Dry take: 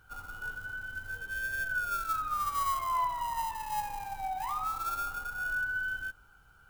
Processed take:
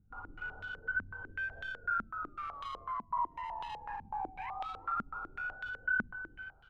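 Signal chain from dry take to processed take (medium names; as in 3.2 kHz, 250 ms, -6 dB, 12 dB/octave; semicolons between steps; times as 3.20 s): multi-tap echo 54/110/353/384/406 ms -5/-17/-11/-5.5/-15 dB; peak limiter -31 dBFS, peak gain reduction 13 dB; step-sequenced low-pass 8 Hz 220–3400 Hz; trim -4.5 dB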